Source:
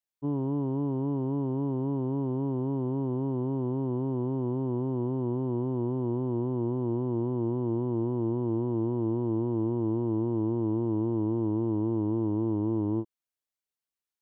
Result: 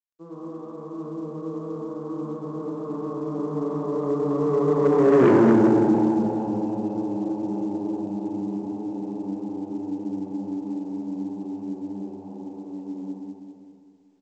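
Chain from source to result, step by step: Doppler pass-by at 5.23 s, 47 m/s, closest 4.8 m; on a send: frequency-shifting echo 128 ms, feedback 60%, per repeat -92 Hz, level -15.5 dB; on the sum: overdrive pedal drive 19 dB, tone 1 kHz, clips at -20 dBFS; Schroeder reverb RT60 2.2 s, combs from 31 ms, DRR -5.5 dB; dynamic bell 240 Hz, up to -4 dB, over -44 dBFS, Q 1.3; Chebyshev shaper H 5 -11 dB, 8 -37 dB, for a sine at -16 dBFS; high-pass 140 Hz 24 dB/octave; peaking EQ 740 Hz -4 dB 0.89 oct; in parallel at -8 dB: saturation -31.5 dBFS, distortion -6 dB; on the sum: trim +8 dB; µ-law 128 kbps 16 kHz

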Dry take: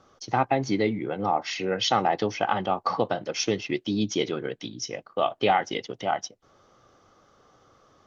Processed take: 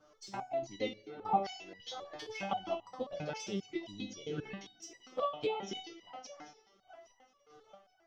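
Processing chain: 0.76–1.16 s: gate -25 dBFS, range -8 dB; 1.79–2.41 s: compressor with a negative ratio -33 dBFS, ratio -1; 3.85–4.55 s: bass shelf 180 Hz +4.5 dB; thinning echo 817 ms, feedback 58%, high-pass 200 Hz, level -20.5 dB; touch-sensitive flanger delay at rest 10.3 ms, full sweep at -21 dBFS; square tremolo 1.6 Hz, depth 60%, duty 40%; gated-style reverb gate 360 ms falling, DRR 11.5 dB; resonator arpeggio 7.5 Hz 150–980 Hz; trim +9.5 dB

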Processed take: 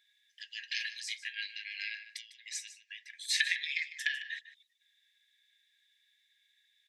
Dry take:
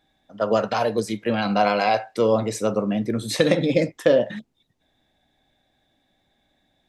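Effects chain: low-pass that closes with the level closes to 2.8 kHz, closed at -14.5 dBFS; 1.15–3.35 s: compression 3:1, threshold -27 dBFS, peak gain reduction 10 dB; brick-wall FIR high-pass 1.6 kHz; delay 151 ms -14.5 dB

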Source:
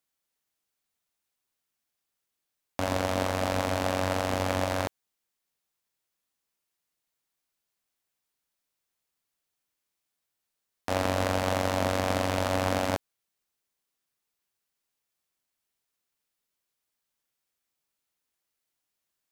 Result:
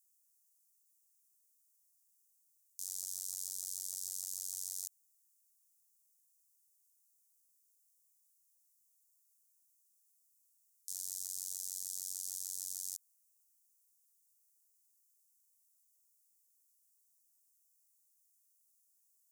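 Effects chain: inverse Chebyshev high-pass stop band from 2.7 kHz, stop band 50 dB; peak limiter -30.5 dBFS, peak gain reduction 9 dB; trim +11 dB

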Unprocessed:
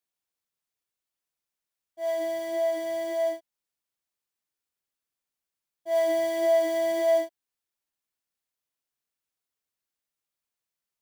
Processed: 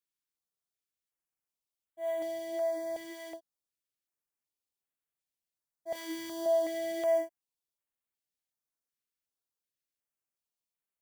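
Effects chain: 5.93–6.46 s: doubling 22 ms -3 dB; step-sequenced notch 2.7 Hz 710–5100 Hz; trim -5 dB

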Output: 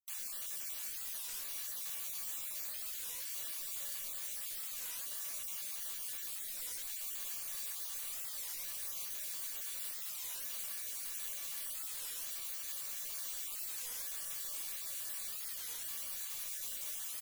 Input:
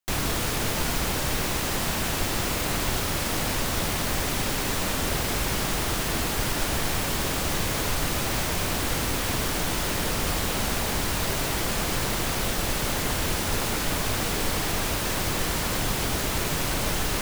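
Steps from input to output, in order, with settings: random holes in the spectrogram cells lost 26%; pre-emphasis filter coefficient 0.97; band-stop 5.2 kHz, Q 20; feedback comb 570 Hz, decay 0.22 s, harmonics all, mix 80%; delay 405 ms -8 dB; warped record 33 1/3 rpm, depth 250 cents

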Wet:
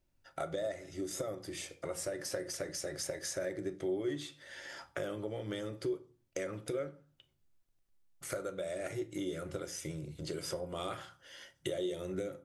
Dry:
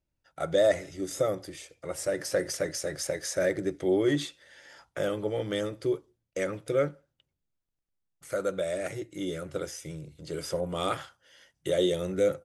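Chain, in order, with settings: compression 5:1, threshold -42 dBFS, peak gain reduction 20.5 dB; on a send: reverberation RT60 0.40 s, pre-delay 3 ms, DRR 9 dB; on the sum: trim +4.5 dB

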